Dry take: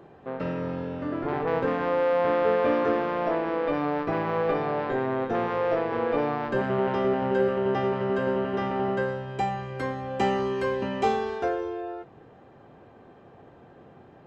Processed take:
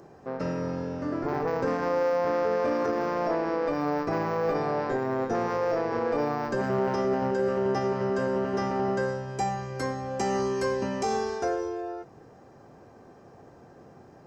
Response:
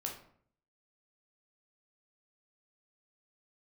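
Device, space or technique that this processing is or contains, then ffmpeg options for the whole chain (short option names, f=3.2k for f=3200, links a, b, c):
over-bright horn tweeter: -af "highshelf=f=4.3k:t=q:w=3:g=8.5,alimiter=limit=-18.5dB:level=0:latency=1:release=23"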